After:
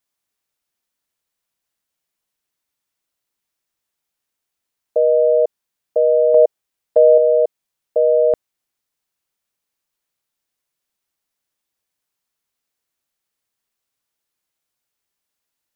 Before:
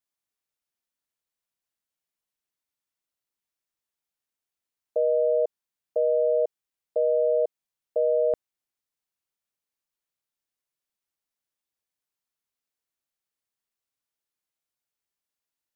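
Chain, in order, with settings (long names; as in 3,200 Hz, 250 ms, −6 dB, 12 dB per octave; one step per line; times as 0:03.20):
0:06.34–0:07.18: dynamic equaliser 610 Hz, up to +5 dB, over −37 dBFS, Q 1.2
level +8.5 dB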